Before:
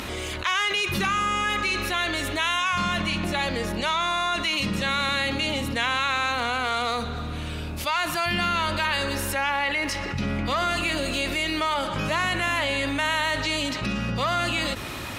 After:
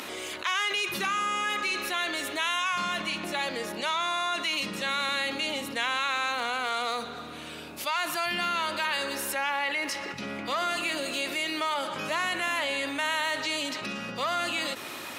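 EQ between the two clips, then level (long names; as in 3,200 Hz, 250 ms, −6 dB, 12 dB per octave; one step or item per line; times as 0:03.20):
high-pass filter 280 Hz 12 dB per octave
high-shelf EQ 8,700 Hz +4.5 dB
−4.0 dB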